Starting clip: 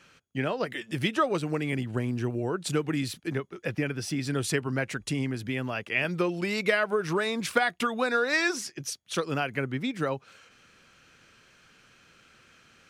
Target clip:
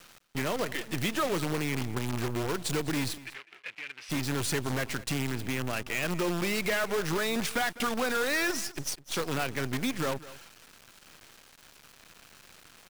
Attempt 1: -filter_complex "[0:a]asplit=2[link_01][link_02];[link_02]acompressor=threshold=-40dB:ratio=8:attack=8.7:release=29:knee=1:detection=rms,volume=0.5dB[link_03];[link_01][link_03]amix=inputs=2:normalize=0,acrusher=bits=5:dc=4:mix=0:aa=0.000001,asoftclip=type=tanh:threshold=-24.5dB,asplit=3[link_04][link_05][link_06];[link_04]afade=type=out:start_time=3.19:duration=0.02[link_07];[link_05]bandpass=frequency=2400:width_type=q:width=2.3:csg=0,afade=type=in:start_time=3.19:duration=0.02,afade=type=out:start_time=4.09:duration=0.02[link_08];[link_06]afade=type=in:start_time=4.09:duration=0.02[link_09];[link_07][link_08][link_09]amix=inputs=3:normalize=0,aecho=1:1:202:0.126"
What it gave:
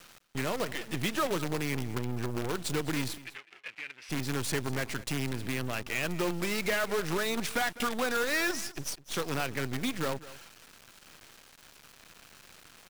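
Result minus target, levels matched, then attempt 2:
downward compressor: peak gain reduction +6.5 dB
-filter_complex "[0:a]asplit=2[link_01][link_02];[link_02]acompressor=threshold=-32.5dB:ratio=8:attack=8.7:release=29:knee=1:detection=rms,volume=0.5dB[link_03];[link_01][link_03]amix=inputs=2:normalize=0,acrusher=bits=5:dc=4:mix=0:aa=0.000001,asoftclip=type=tanh:threshold=-24.5dB,asplit=3[link_04][link_05][link_06];[link_04]afade=type=out:start_time=3.19:duration=0.02[link_07];[link_05]bandpass=frequency=2400:width_type=q:width=2.3:csg=0,afade=type=in:start_time=3.19:duration=0.02,afade=type=out:start_time=4.09:duration=0.02[link_08];[link_06]afade=type=in:start_time=4.09:duration=0.02[link_09];[link_07][link_08][link_09]amix=inputs=3:normalize=0,aecho=1:1:202:0.126"

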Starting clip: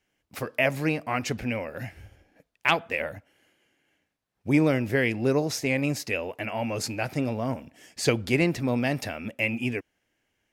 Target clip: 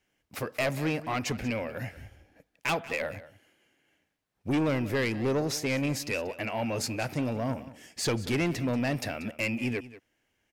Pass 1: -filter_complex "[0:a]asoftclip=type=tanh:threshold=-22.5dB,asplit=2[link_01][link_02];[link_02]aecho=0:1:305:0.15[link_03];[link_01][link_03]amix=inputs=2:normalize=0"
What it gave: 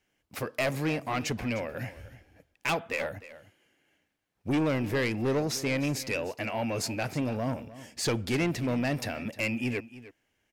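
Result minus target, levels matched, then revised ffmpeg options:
echo 119 ms late
-filter_complex "[0:a]asoftclip=type=tanh:threshold=-22.5dB,asplit=2[link_01][link_02];[link_02]aecho=0:1:186:0.15[link_03];[link_01][link_03]amix=inputs=2:normalize=0"

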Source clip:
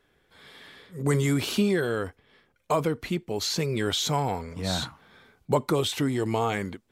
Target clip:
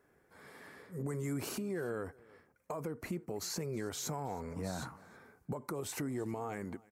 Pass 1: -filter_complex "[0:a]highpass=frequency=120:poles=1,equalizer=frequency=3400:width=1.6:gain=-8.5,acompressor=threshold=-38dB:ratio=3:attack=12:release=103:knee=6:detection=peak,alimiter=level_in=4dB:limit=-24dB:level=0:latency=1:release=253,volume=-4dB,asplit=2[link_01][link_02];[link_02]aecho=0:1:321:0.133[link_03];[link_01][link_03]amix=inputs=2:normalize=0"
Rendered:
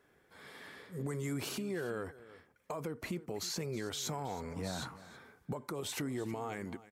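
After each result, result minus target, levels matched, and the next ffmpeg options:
4,000 Hz band +4.5 dB; echo-to-direct +6.5 dB
-filter_complex "[0:a]highpass=frequency=120:poles=1,equalizer=frequency=3400:width=1.6:gain=-19.5,acompressor=threshold=-38dB:ratio=3:attack=12:release=103:knee=6:detection=peak,alimiter=level_in=4dB:limit=-24dB:level=0:latency=1:release=253,volume=-4dB,asplit=2[link_01][link_02];[link_02]aecho=0:1:321:0.133[link_03];[link_01][link_03]amix=inputs=2:normalize=0"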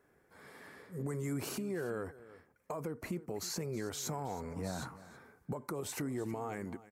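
echo-to-direct +6.5 dB
-filter_complex "[0:a]highpass=frequency=120:poles=1,equalizer=frequency=3400:width=1.6:gain=-19.5,acompressor=threshold=-38dB:ratio=3:attack=12:release=103:knee=6:detection=peak,alimiter=level_in=4dB:limit=-24dB:level=0:latency=1:release=253,volume=-4dB,asplit=2[link_01][link_02];[link_02]aecho=0:1:321:0.0631[link_03];[link_01][link_03]amix=inputs=2:normalize=0"

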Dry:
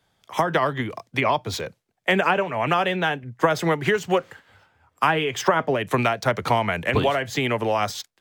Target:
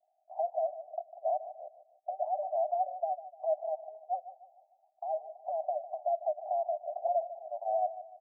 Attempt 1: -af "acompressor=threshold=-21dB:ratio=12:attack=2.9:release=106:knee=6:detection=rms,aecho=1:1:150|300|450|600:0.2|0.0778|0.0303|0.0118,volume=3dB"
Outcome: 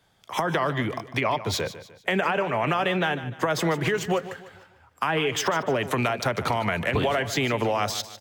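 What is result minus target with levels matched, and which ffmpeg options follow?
500 Hz band −3.0 dB
-af "acompressor=threshold=-21dB:ratio=12:attack=2.9:release=106:knee=6:detection=rms,asuperpass=centerf=690:order=8:qfactor=4.1,aecho=1:1:150|300|450|600:0.2|0.0778|0.0303|0.0118,volume=3dB"

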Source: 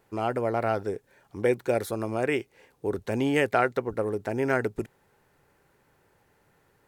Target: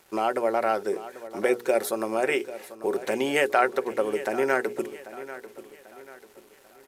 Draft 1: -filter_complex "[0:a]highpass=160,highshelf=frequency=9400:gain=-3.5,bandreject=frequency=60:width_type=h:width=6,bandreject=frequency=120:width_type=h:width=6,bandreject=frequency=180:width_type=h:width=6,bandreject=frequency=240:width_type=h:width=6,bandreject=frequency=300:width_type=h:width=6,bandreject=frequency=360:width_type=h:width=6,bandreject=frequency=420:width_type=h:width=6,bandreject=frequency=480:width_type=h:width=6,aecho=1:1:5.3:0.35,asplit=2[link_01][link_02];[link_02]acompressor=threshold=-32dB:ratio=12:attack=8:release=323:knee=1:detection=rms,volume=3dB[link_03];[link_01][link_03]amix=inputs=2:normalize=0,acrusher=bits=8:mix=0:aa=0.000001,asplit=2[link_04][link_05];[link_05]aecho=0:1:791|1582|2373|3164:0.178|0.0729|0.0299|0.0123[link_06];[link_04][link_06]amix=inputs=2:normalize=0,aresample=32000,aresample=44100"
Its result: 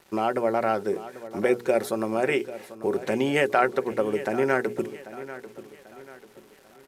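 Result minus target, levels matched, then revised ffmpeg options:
125 Hz band +9.0 dB; 8,000 Hz band −5.0 dB
-filter_complex "[0:a]highpass=330,highshelf=frequency=9400:gain=6.5,bandreject=frequency=60:width_type=h:width=6,bandreject=frequency=120:width_type=h:width=6,bandreject=frequency=180:width_type=h:width=6,bandreject=frequency=240:width_type=h:width=6,bandreject=frequency=300:width_type=h:width=6,bandreject=frequency=360:width_type=h:width=6,bandreject=frequency=420:width_type=h:width=6,bandreject=frequency=480:width_type=h:width=6,aecho=1:1:5.3:0.35,asplit=2[link_01][link_02];[link_02]acompressor=threshold=-32dB:ratio=12:attack=8:release=323:knee=1:detection=rms,volume=3dB[link_03];[link_01][link_03]amix=inputs=2:normalize=0,acrusher=bits=8:mix=0:aa=0.000001,asplit=2[link_04][link_05];[link_05]aecho=0:1:791|1582|2373|3164:0.178|0.0729|0.0299|0.0123[link_06];[link_04][link_06]amix=inputs=2:normalize=0,aresample=32000,aresample=44100"

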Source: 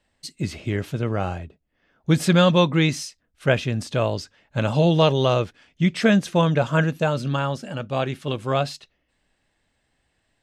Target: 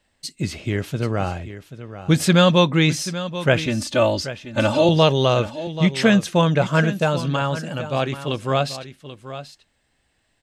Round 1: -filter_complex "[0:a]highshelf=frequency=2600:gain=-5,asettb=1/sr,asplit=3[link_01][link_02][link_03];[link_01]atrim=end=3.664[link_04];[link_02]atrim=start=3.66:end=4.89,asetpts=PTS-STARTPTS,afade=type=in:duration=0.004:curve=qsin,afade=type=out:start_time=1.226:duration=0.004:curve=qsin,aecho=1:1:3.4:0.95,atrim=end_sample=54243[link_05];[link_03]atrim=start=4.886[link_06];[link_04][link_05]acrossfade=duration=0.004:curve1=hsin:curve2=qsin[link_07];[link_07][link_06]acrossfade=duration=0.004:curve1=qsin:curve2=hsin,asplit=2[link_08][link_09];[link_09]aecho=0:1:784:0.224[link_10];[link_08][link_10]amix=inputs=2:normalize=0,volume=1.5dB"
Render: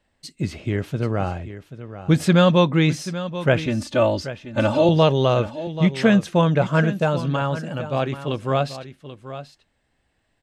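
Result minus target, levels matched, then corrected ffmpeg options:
4,000 Hz band −4.5 dB
-filter_complex "[0:a]highshelf=frequency=2600:gain=3.5,asettb=1/sr,asplit=3[link_01][link_02][link_03];[link_01]atrim=end=3.664[link_04];[link_02]atrim=start=3.66:end=4.89,asetpts=PTS-STARTPTS,afade=type=in:duration=0.004:curve=qsin,afade=type=out:start_time=1.226:duration=0.004:curve=qsin,aecho=1:1:3.4:0.95,atrim=end_sample=54243[link_05];[link_03]atrim=start=4.886[link_06];[link_04][link_05]acrossfade=duration=0.004:curve1=hsin:curve2=qsin[link_07];[link_07][link_06]acrossfade=duration=0.004:curve1=qsin:curve2=hsin,asplit=2[link_08][link_09];[link_09]aecho=0:1:784:0.224[link_10];[link_08][link_10]amix=inputs=2:normalize=0,volume=1.5dB"

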